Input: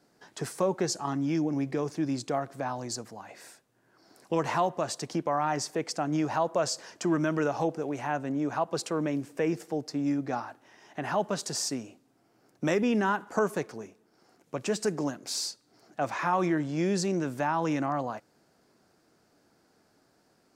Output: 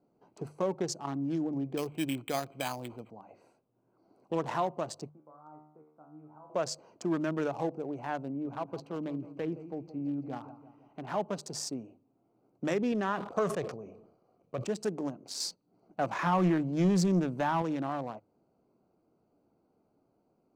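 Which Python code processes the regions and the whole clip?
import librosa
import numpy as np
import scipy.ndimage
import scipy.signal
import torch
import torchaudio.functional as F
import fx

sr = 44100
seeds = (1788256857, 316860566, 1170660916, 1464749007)

y = fx.chain(x, sr, fx.lowpass_res(hz=2400.0, q=13.0),
    fx.resample_bad(factor=8, down='none', up='hold'), at=(1.77, 3.1))
y = fx.chain(y, sr, fx.ladder_lowpass(hz=1600.0, resonance_pct=55),
    fx.comb_fb(f0_hz=76.0, decay_s=0.73, harmonics='all', damping=0.0, mix_pct=90), at=(5.09, 6.5))
y = fx.chain(y, sr, fx.lowpass(hz=4700.0, slope=12),
    fx.peak_eq(hz=610.0, db=-4.0, octaves=2.4),
    fx.echo_crushed(ms=168, feedback_pct=55, bits=10, wet_db=-13.0), at=(8.28, 11.09))
y = fx.chain(y, sr, fx.lowpass(hz=7300.0, slope=12),
    fx.comb(ms=1.7, depth=0.43),
    fx.sustainer(db_per_s=69.0), at=(12.92, 14.64))
y = fx.chain(y, sr, fx.peak_eq(hz=180.0, db=9.5, octaves=0.23),
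    fx.leveller(passes=1), at=(15.4, 17.62))
y = fx.wiener(y, sr, points=25)
y = fx.hum_notches(y, sr, base_hz=50, count=3)
y = y * 10.0 ** (-3.5 / 20.0)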